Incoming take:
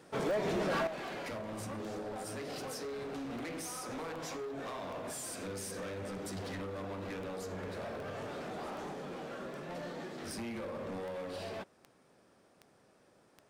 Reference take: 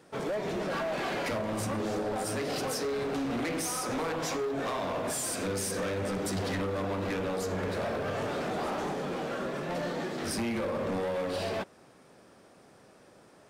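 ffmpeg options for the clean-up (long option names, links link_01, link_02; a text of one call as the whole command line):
ffmpeg -i in.wav -af "adeclick=threshold=4,asetnsamples=nb_out_samples=441:pad=0,asendcmd='0.87 volume volume 9dB',volume=0dB" out.wav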